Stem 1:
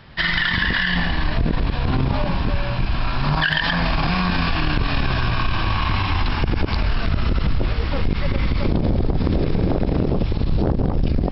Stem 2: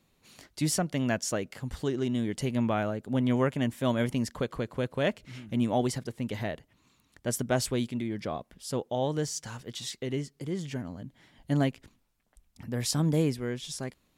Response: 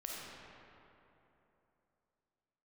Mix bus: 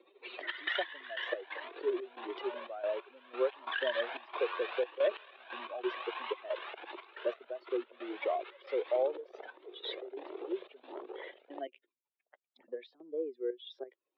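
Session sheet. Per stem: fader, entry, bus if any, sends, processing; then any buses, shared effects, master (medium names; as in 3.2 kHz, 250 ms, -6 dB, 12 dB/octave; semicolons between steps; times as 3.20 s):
-4.5 dB, 0.30 s, no send, Shepard-style flanger rising 1.5 Hz; auto duck -7 dB, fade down 1.50 s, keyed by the second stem
+0.5 dB, 0.00 s, no send, spectral contrast enhancement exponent 2.3; three bands compressed up and down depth 70%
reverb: none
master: trance gate "xxx.x..x.xxx." 90 bpm -12 dB; Chebyshev band-pass 360–3700 Hz, order 5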